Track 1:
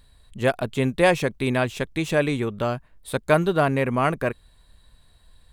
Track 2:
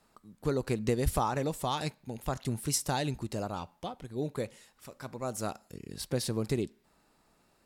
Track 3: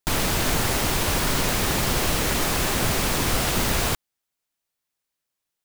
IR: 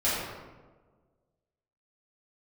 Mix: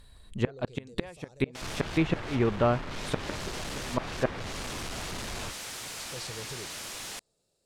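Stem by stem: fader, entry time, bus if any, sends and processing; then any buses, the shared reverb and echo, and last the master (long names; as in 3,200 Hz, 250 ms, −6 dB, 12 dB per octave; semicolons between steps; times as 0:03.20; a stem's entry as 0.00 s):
+1.0 dB, 0.00 s, no send, gate with flip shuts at −12 dBFS, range −29 dB
−12.5 dB, 0.00 s, no send, brickwall limiter −24.5 dBFS, peak gain reduction 9 dB; octave-band graphic EQ 125/250/500/1,000/2,000/4,000/8,000 Hz +7/−6/+12/−9/−6/+8/+11 dB; automatic ducking −11 dB, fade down 1.00 s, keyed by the first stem
−6.5 dB, 1.55 s, no send, sign of each sample alone; flanger 1.3 Hz, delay 8 ms, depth 3.7 ms, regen −75%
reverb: not used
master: treble cut that deepens with the level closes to 2,400 Hz, closed at −24.5 dBFS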